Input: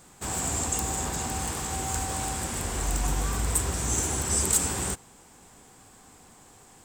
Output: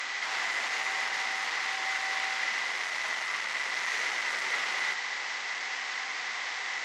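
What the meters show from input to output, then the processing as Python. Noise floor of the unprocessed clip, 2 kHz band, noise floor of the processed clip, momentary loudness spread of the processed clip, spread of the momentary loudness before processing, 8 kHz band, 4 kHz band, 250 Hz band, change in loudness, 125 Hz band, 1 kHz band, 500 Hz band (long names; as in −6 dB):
−54 dBFS, +12.0 dB, −36 dBFS, 4 LU, 7 LU, −14.5 dB, +5.0 dB, −21.0 dB, −3.0 dB, below −35 dB, −0.5 dB, −8.5 dB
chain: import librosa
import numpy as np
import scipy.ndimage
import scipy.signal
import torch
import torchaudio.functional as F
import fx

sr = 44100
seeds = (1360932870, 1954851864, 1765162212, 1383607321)

y = fx.delta_mod(x, sr, bps=32000, step_db=-31.0)
y = fx.high_shelf(y, sr, hz=5000.0, db=-8.0)
y = fx.fold_sine(y, sr, drive_db=8, ceiling_db=-18.5)
y = scipy.signal.sosfilt(scipy.signal.butter(2, 1100.0, 'highpass', fs=sr, output='sos'), y)
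y = fx.peak_eq(y, sr, hz=2000.0, db=14.0, octaves=0.23)
y = y * 10.0 ** (-6.0 / 20.0)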